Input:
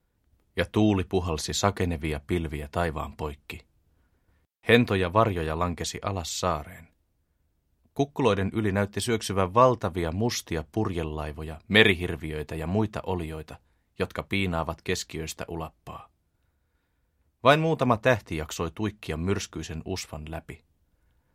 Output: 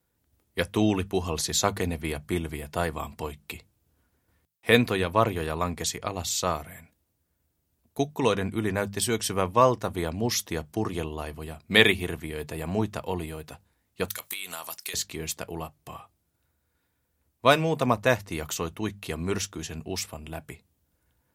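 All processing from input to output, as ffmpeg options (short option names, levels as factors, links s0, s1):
-filter_complex "[0:a]asettb=1/sr,asplit=3[s0][s1][s2];[s0]atrim=end=14.084[s3];[s1]atrim=start=14.08:end=14.94,asetpts=PTS-STARTPTS,afade=t=in:d=0.004:c=qsin,afade=t=out:st=0.856:d=0.004:c=qsin,aderivative,acompressor=threshold=0.00631:ratio=12:attack=3.2:release=140:knee=1:detection=peak,aeval=exprs='0.0668*sin(PI/2*3.16*val(0)/0.0668)':c=same[s4];[s2]atrim=start=14.936[s5];[s3][s4]acrossfade=d=0.004:c1=hsin:c2=qsin[s6];[s6][s5]acrossfade=d=0.004:c1=qsin:c2=hsin,highpass=64,highshelf=f=6100:g=10.5,bandreject=f=50:t=h:w=6,bandreject=f=100:t=h:w=6,bandreject=f=150:t=h:w=6,bandreject=f=200:t=h:w=6,volume=0.891"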